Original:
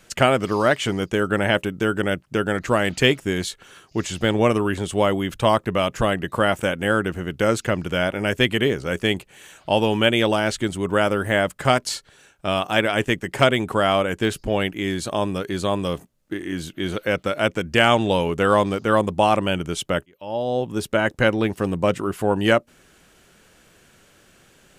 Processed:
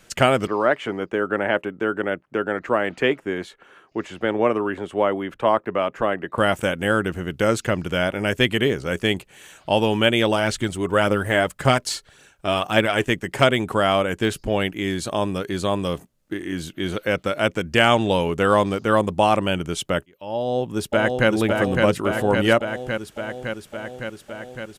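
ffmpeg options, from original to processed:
-filter_complex "[0:a]asettb=1/sr,asplit=3[a][b][c];[a]atrim=end=0.474[d];[b]atrim=start=0.47:end=6.38,asetpts=PTS-STARTPTS,afade=t=in:d=0.004:c=qsin,afade=t=out:st=5.906:d=0.004:c=qsin,acrossover=split=240 2400:gain=0.2 1 0.126[e][f][g];[e][f][g]amix=inputs=3:normalize=0[h];[c]atrim=start=6.376[i];[d][h]acrossfade=d=0.004:c1=hsin:c2=qsin[j];[j][i]acrossfade=d=0.004:c1=qsin:c2=hsin,asplit=3[k][l][m];[k]afade=t=out:st=10.35:d=0.02[n];[l]aphaser=in_gain=1:out_gain=1:delay=3.2:decay=0.34:speed=1.8:type=triangular,afade=t=in:st=10.35:d=0.02,afade=t=out:st=13.06:d=0.02[o];[m]afade=t=in:st=13.06:d=0.02[p];[n][o][p]amix=inputs=3:normalize=0,asplit=2[q][r];[r]afade=t=in:st=20.36:d=0.01,afade=t=out:st=21.29:d=0.01,aecho=0:1:560|1120|1680|2240|2800|3360|3920|4480|5040|5600|6160|6720:0.707946|0.530959|0.39822|0.298665|0.223998|0.167999|0.125999|0.0944994|0.0708745|0.0531559|0.0398669|0.0299002[s];[q][s]amix=inputs=2:normalize=0"

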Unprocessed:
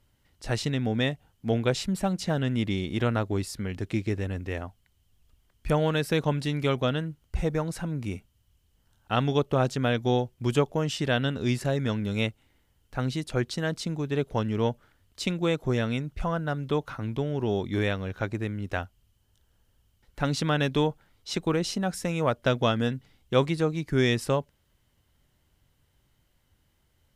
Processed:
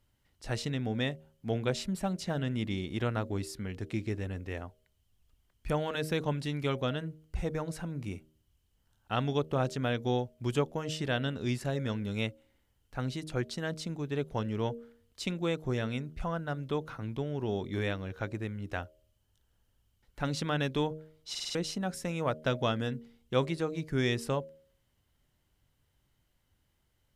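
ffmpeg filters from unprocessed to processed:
-filter_complex "[0:a]asplit=6[a][b][c][d][e][f];[a]atrim=end=21.352[g];[b]atrim=start=21.298:end=21.352[h];[c]atrim=start=21.298:end=21.352[i];[d]atrim=start=21.298:end=21.352[j];[e]atrim=start=21.298:end=21.352[k];[f]atrim=start=21.548[l];[g][h]acrossfade=d=0.004:c1=hsin:c2=hsin[m];[m][i]acrossfade=d=0.004:c1=hsin:c2=hsin[n];[n][j]acrossfade=d=0.004:c1=hsin:c2=hsin[o];[o][k]acrossfade=d=0.004:c1=hsin:c2=hsin[p];[p][l]acrossfade=d=0.004:c1=hsin:c2=hsin,bandreject=f=77.99:t=h:w=4,bandreject=f=155.98:t=h:w=4,bandreject=f=233.97:t=h:w=4,bandreject=f=311.96:t=h:w=4,bandreject=f=389.95:t=h:w=4,bandreject=f=467.94:t=h:w=4,bandreject=f=545.93:t=h:w=4,bandreject=f=623.92:t=h:w=4,volume=-5.5dB"

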